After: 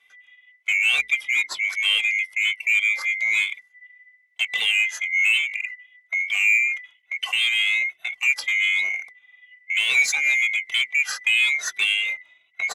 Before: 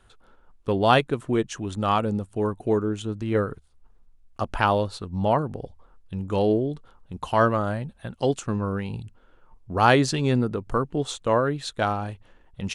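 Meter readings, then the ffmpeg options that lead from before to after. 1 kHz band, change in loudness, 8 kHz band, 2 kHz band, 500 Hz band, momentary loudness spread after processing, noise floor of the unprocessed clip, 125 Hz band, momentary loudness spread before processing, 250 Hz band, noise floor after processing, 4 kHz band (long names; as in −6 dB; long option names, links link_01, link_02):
−19.0 dB, +4.5 dB, +8.5 dB, +14.5 dB, below −25 dB, 10 LU, −57 dBFS, below −35 dB, 15 LU, below −35 dB, −62 dBFS, +12.0 dB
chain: -filter_complex "[0:a]afftfilt=real='real(if(lt(b,920),b+92*(1-2*mod(floor(b/92),2)),b),0)':imag='imag(if(lt(b,920),b+92*(1-2*mod(floor(b/92),2)),b),0)':win_size=2048:overlap=0.75,agate=range=-10dB:threshold=-41dB:ratio=16:detection=peak,acrossover=split=2000[link_01][link_02];[link_01]acompressor=threshold=-39dB:ratio=6[link_03];[link_02]alimiter=limit=-16dB:level=0:latency=1:release=22[link_04];[link_03][link_04]amix=inputs=2:normalize=0,asplit=2[link_05][link_06];[link_06]highpass=frequency=720:poles=1,volume=11dB,asoftclip=type=tanh:threshold=-14dB[link_07];[link_05][link_07]amix=inputs=2:normalize=0,lowpass=frequency=6100:poles=1,volume=-6dB,bandreject=frequency=60:width_type=h:width=6,bandreject=frequency=120:width_type=h:width=6,bandreject=frequency=180:width_type=h:width=6,bandreject=frequency=240:width_type=h:width=6,bandreject=frequency=300:width_type=h:width=6,bandreject=frequency=360:width_type=h:width=6,bandreject=frequency=420:width_type=h:width=6,asplit=2[link_08][link_09];[link_09]adelay=2.2,afreqshift=1.1[link_10];[link_08][link_10]amix=inputs=2:normalize=1,volume=5dB"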